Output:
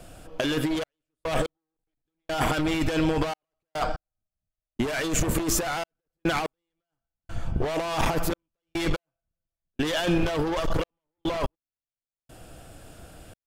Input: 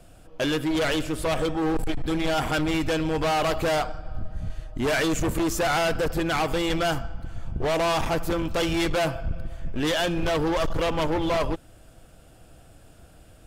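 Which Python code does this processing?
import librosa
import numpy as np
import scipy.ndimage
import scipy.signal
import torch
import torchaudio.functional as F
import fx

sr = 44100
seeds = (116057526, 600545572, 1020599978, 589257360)

y = fx.low_shelf(x, sr, hz=160.0, db=-4.0)
y = fx.over_compress(y, sr, threshold_db=-27.0, ratio=-0.5)
y = fx.step_gate(y, sr, bpm=72, pattern='xxxx..x....x', floor_db=-60.0, edge_ms=4.5)
y = y * librosa.db_to_amplitude(3.5)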